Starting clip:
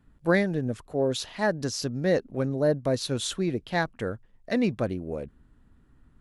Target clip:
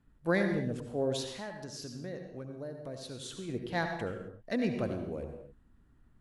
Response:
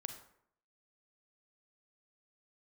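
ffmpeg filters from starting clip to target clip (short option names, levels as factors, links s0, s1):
-filter_complex "[0:a]asplit=3[s0][s1][s2];[s0]afade=t=out:st=1.32:d=0.02[s3];[s1]acompressor=threshold=0.0178:ratio=4,afade=t=in:st=1.32:d=0.02,afade=t=out:st=3.48:d=0.02[s4];[s2]afade=t=in:st=3.48:d=0.02[s5];[s3][s4][s5]amix=inputs=3:normalize=0[s6];[1:a]atrim=start_sample=2205,afade=t=out:st=0.2:d=0.01,atrim=end_sample=9261,asetrate=24255,aresample=44100[s7];[s6][s7]afir=irnorm=-1:irlink=0,volume=0.501"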